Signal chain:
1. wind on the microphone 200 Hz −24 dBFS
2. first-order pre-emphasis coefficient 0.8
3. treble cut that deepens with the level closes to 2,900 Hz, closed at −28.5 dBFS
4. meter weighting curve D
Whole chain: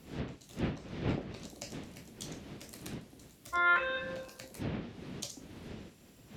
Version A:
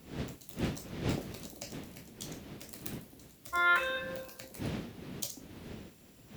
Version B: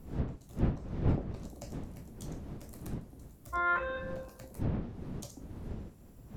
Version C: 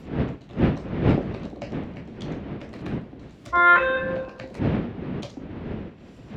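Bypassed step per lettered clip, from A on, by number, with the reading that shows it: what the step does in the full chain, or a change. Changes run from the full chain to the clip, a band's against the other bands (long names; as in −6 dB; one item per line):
3, 8 kHz band +2.5 dB
4, 4 kHz band −10.0 dB
2, 4 kHz band −10.0 dB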